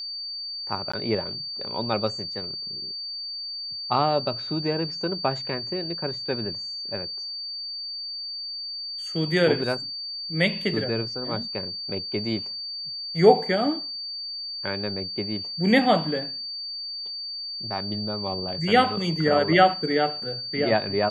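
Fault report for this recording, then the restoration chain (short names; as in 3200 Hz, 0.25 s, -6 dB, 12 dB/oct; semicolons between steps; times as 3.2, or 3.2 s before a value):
tone 4600 Hz -31 dBFS
0.92–0.94 gap 15 ms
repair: notch 4600 Hz, Q 30; interpolate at 0.92, 15 ms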